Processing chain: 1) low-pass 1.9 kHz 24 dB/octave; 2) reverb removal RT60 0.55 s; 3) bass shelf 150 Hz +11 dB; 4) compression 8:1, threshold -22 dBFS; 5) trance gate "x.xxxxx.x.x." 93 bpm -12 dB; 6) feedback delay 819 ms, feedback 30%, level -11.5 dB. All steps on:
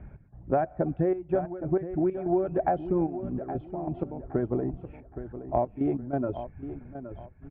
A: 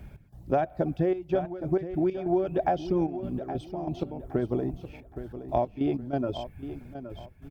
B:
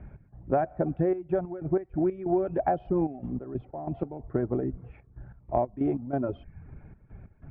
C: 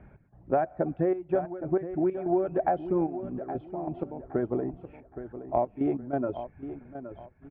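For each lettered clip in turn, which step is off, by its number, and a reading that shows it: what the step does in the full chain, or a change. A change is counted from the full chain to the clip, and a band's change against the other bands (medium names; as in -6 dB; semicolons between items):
1, 2 kHz band +2.0 dB; 6, momentary loudness spread change +5 LU; 3, 125 Hz band -4.5 dB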